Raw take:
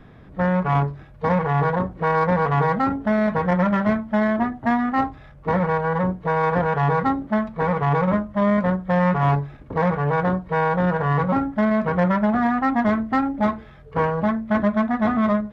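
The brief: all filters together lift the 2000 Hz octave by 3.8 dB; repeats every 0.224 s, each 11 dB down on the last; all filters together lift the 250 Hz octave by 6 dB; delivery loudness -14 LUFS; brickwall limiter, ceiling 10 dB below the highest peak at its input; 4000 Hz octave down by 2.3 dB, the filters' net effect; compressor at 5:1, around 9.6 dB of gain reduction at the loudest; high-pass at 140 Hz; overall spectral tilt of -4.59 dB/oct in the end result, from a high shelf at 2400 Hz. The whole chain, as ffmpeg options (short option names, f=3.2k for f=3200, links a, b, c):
-af "highpass=140,equalizer=f=250:t=o:g=8.5,equalizer=f=2k:t=o:g=5,highshelf=f=2.4k:g=3,equalizer=f=4k:t=o:g=-8.5,acompressor=threshold=-22dB:ratio=5,alimiter=limit=-22dB:level=0:latency=1,aecho=1:1:224|448|672:0.282|0.0789|0.0221,volume=15.5dB"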